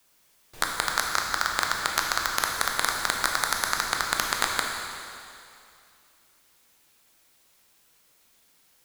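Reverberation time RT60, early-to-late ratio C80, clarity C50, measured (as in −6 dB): 2.5 s, 3.0 dB, 2.0 dB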